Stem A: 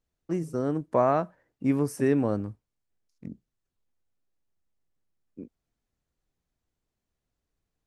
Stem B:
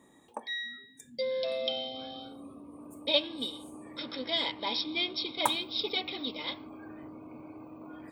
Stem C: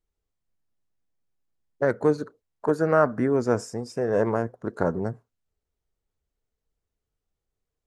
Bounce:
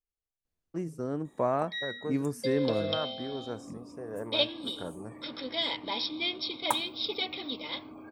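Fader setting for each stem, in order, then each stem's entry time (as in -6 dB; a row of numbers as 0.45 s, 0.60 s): -5.5 dB, -0.5 dB, -15.5 dB; 0.45 s, 1.25 s, 0.00 s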